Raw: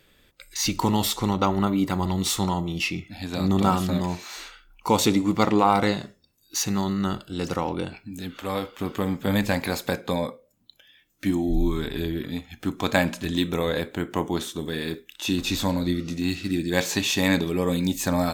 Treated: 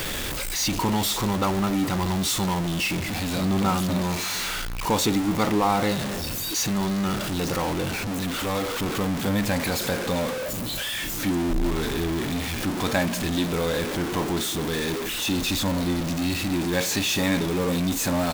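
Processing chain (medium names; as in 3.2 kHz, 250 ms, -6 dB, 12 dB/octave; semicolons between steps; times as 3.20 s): jump at every zero crossing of -18 dBFS; echo from a far wall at 73 m, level -21 dB; trim -5.5 dB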